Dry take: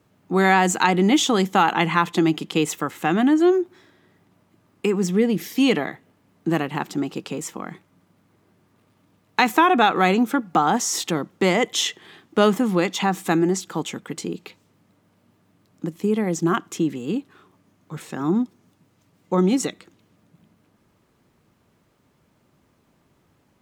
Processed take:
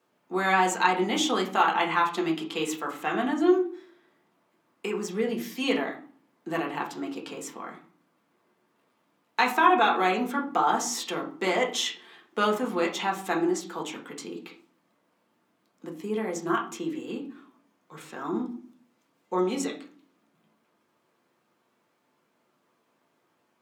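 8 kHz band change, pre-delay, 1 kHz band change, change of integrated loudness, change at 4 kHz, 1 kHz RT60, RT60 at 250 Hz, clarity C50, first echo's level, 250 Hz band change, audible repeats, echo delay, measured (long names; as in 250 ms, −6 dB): −7.0 dB, 4 ms, −3.5 dB, −6.0 dB, −5.5 dB, 0.45 s, 0.70 s, 10.5 dB, no echo audible, −9.0 dB, no echo audible, no echo audible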